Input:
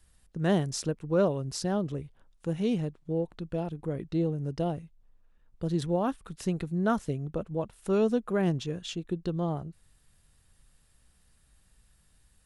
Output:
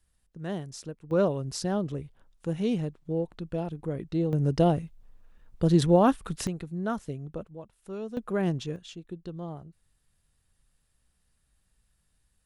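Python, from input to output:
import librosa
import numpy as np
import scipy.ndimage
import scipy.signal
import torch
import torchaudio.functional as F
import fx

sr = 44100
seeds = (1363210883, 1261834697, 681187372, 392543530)

y = fx.gain(x, sr, db=fx.steps((0.0, -8.5), (1.11, 0.5), (4.33, 8.0), (6.47, -4.0), (7.47, -11.5), (8.17, -0.5), (8.76, -7.5)))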